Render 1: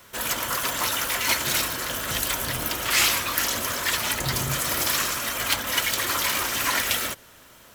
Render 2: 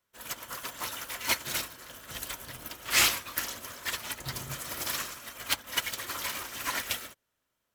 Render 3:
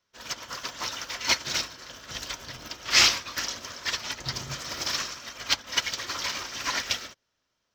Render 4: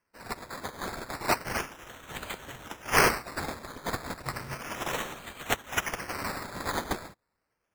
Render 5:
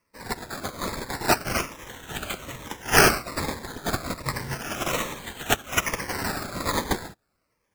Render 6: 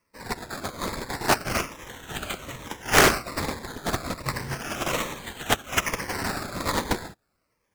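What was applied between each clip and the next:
upward expander 2.5:1, over -38 dBFS; gain -1.5 dB
resonant high shelf 7500 Hz -12 dB, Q 3; gain +2.5 dB
decimation with a swept rate 12×, swing 60% 0.33 Hz; gain -2.5 dB
cascading phaser falling 1.2 Hz; gain +7.5 dB
Doppler distortion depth 0.49 ms

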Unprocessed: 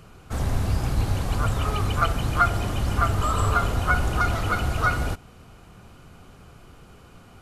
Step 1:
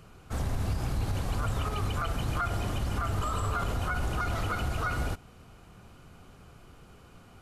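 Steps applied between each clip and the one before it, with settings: limiter -17 dBFS, peak gain reduction 10.5 dB; gain -4.5 dB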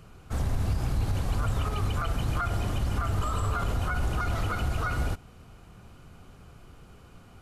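low shelf 150 Hz +4 dB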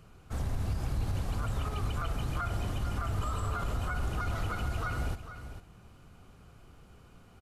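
echo 0.449 s -11.5 dB; gain -5 dB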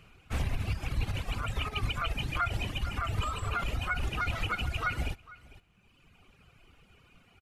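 bell 2500 Hz +13.5 dB 0.9 oct; reverb removal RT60 1.8 s; upward expander 1.5:1, over -43 dBFS; gain +4.5 dB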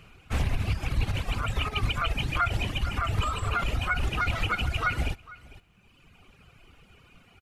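Doppler distortion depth 0.15 ms; gain +4.5 dB

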